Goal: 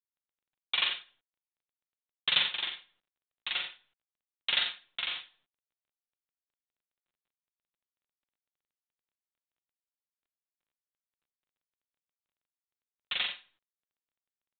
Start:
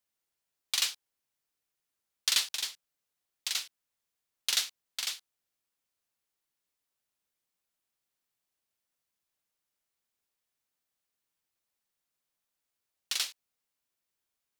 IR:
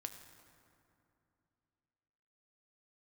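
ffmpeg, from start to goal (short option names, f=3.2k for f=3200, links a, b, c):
-filter_complex "[0:a]acrusher=bits=3:mode=log:mix=0:aa=0.000001,aecho=1:1:44|56|89:0.596|0.106|0.376,agate=range=-17dB:threshold=-56dB:ratio=16:detection=peak,aecho=1:1:5.6:0.61,asplit=2[a][b];[1:a]atrim=start_sample=2205,afade=t=out:st=0.22:d=0.01,atrim=end_sample=10143,lowshelf=f=230:g=-7.5[c];[b][c]afir=irnorm=-1:irlink=0,volume=-6.5dB[d];[a][d]amix=inputs=2:normalize=0" -ar 8000 -c:a pcm_mulaw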